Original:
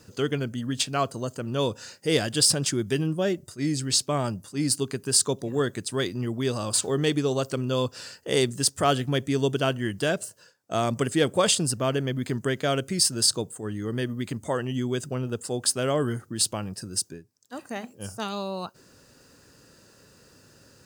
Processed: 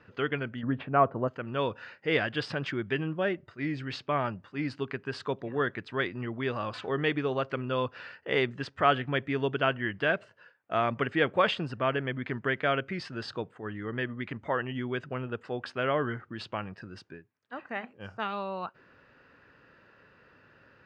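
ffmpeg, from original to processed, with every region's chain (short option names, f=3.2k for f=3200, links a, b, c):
-filter_complex "[0:a]asettb=1/sr,asplit=3[a][b][c];[a]atrim=end=0.634[d];[b]atrim=start=0.63:end=1.28,asetpts=PTS-STARTPTS,afade=t=in:d=0.004:c=qsin,afade=t=out:st=0.646:d=0.004:c=qsin,lowpass=1k,acontrast=66[e];[c]atrim=start=1.276[f];[d][e]acrossfade=d=0.004:c1=hsin:c2=qsin[g];[g][f]acrossfade=d=0.004:c1=qsin:c2=hsin,lowpass=f=2.3k:w=0.5412,lowpass=f=2.3k:w=1.3066,deesser=0.75,tiltshelf=f=910:g=-7.5"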